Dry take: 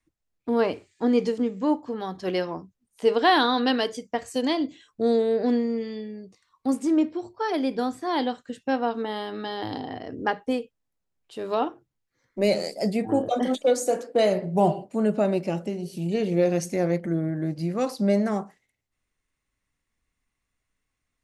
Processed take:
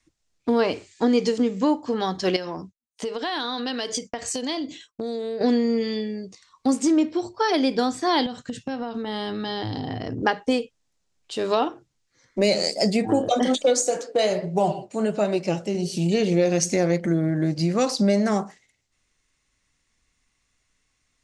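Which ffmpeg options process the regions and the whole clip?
ffmpeg -i in.wav -filter_complex "[0:a]asettb=1/sr,asplit=3[link_01][link_02][link_03];[link_01]atrim=end=2.364[link_04];[link_02]atrim=start=2.36:end=5.41,asetpts=PTS-STARTPTS,afade=type=in:duration=0.004:curve=qsin,afade=type=out:start_time=3.046:duration=0.004:curve=qsin,agate=range=-33dB:threshold=-50dB:ratio=3:release=100:detection=peak,acompressor=threshold=-32dB:ratio=12:attack=3.2:release=140:knee=1:detection=peak[link_05];[link_03]atrim=start=5.406[link_06];[link_04][link_05]acrossfade=duration=0.004:curve1=hsin:curve2=qsin[link_07];[link_07][link_06]acrossfade=duration=0.004:curve1=qsin:curve2=hsin,asettb=1/sr,asplit=3[link_08][link_09][link_10];[link_08]atrim=end=8.264[link_11];[link_09]atrim=start=8.26:end=10.23,asetpts=PTS-STARTPTS,afade=type=in:duration=0.004:curve=qsin,afade=type=out:start_time=1.966:duration=0.004:curve=qsin,equalizer=frequency=120:width_type=o:width=1.5:gain=14.5,acompressor=threshold=-32dB:ratio=20:attack=3.2:release=140:knee=1:detection=peak[link_12];[link_10]atrim=start=10.226[link_13];[link_11][link_12]acrossfade=duration=0.004:curve1=hsin:curve2=qsin[link_14];[link_14][link_13]acrossfade=duration=0.004:curve1=qsin:curve2=hsin,asettb=1/sr,asplit=3[link_15][link_16][link_17];[link_15]atrim=end=13.814[link_18];[link_16]atrim=start=13.81:end=15.75,asetpts=PTS-STARTPTS,afade=type=in:duration=0.004:curve=qsin,afade=type=out:start_time=1.936:duration=0.004:curve=qsin,equalizer=frequency=240:width=3.7:gain=-6.5,flanger=delay=2.5:depth=8.1:regen=62:speed=1.3:shape=triangular[link_19];[link_17]atrim=start=15.746[link_20];[link_18][link_19]acrossfade=duration=0.004:curve1=hsin:curve2=qsin[link_21];[link_21][link_20]acrossfade=duration=0.004:curve1=qsin:curve2=hsin,lowpass=frequency=7000:width=0.5412,lowpass=frequency=7000:width=1.3066,aemphasis=mode=production:type=75fm,acompressor=threshold=-26dB:ratio=2.5,volume=7.5dB" out.wav

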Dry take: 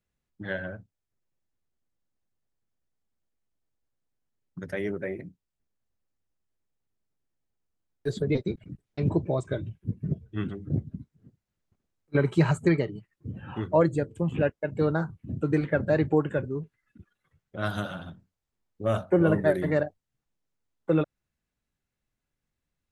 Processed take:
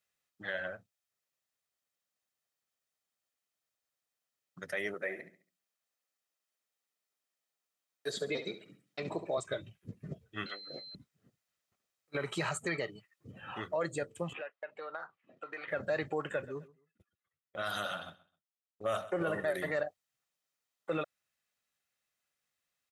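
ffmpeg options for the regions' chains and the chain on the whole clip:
ffmpeg -i in.wav -filter_complex "[0:a]asettb=1/sr,asplit=3[link_01][link_02][link_03];[link_01]atrim=end=4.944[link_04];[link_02]atrim=start=4.94:end=9.38,asetpts=PTS-STARTPTS,afade=type=in:duration=0.004:curve=qsin,afade=type=out:start_time=4.436:duration=0.004:curve=qsin,highpass=190,aecho=1:1:69|138|207|276:0.237|0.0854|0.0307|0.0111,atrim=end_sample=195804[link_05];[link_03]atrim=start=9.376[link_06];[link_04][link_05]acrossfade=duration=0.004:curve1=hsin:curve2=qsin[link_07];[link_07][link_06]acrossfade=duration=0.004:curve1=qsin:curve2=hsin,asettb=1/sr,asplit=3[link_08][link_09][link_10];[link_08]atrim=end=10.464[link_11];[link_09]atrim=start=10.46:end=10.95,asetpts=PTS-STARTPTS,afade=type=in:duration=0.004:curve=qsin,afade=type=out:start_time=0.486:duration=0.004:curve=qsin,aeval=exprs='val(0)+0.00398*sin(2*PI*4100*n/s)':channel_layout=same,highpass=460,equalizer=frequency=540:width_type=q:width=4:gain=7,equalizer=frequency=940:width_type=q:width=4:gain=-3,equalizer=frequency=1400:width_type=q:width=4:gain=5,equalizer=frequency=2100:width_type=q:width=4:gain=9,equalizer=frequency=3200:width_type=q:width=4:gain=5,equalizer=frequency=4700:width_type=q:width=4:gain=5,lowpass=frequency=6300:width=0.5412,lowpass=frequency=6300:width=1.3066,asplit=2[link_12][link_13];[link_13]adelay=14,volume=-7dB[link_14];[link_12][link_14]amix=inputs=2:normalize=0,atrim=end_sample=21609[link_15];[link_10]atrim=start=10.946[link_16];[link_11][link_15]acrossfade=duration=0.004:curve1=hsin:curve2=qsin[link_17];[link_17][link_16]acrossfade=duration=0.004:curve1=qsin:curve2=hsin,asettb=1/sr,asplit=3[link_18][link_19][link_20];[link_18]atrim=end=14.334[link_21];[link_19]atrim=start=14.33:end=15.68,asetpts=PTS-STARTPTS,afade=type=in:duration=0.004:curve=qsin,afade=type=out:start_time=1.346:duration=0.004:curve=qsin,highpass=640,lowpass=2600,acompressor=threshold=-35dB:ratio=12:attack=3.2:release=140:knee=1:detection=peak[link_22];[link_20]atrim=start=15.676[link_23];[link_21][link_22]acrossfade=duration=0.004:curve1=hsin:curve2=qsin[link_24];[link_24][link_23]acrossfade=duration=0.004:curve1=qsin:curve2=hsin,asettb=1/sr,asplit=3[link_25][link_26][link_27];[link_25]atrim=end=16.214[link_28];[link_26]atrim=start=16.21:end=19.51,asetpts=PTS-STARTPTS,afade=type=in:duration=0.004:curve=qsin,afade=type=out:start_time=3.296:duration=0.004:curve=qsin,agate=range=-17dB:threshold=-47dB:ratio=16:release=100:detection=peak,aecho=1:1:130|260:0.0891|0.0223,atrim=end_sample=145530[link_29];[link_27]atrim=start=19.506[link_30];[link_28][link_29]acrossfade=duration=0.004:curve1=hsin:curve2=qsin[link_31];[link_31][link_30]acrossfade=duration=0.004:curve1=qsin:curve2=hsin,highpass=frequency=1400:poles=1,aecho=1:1:1.6:0.31,alimiter=level_in=5dB:limit=-24dB:level=0:latency=1:release=53,volume=-5dB,volume=4.5dB" out.wav

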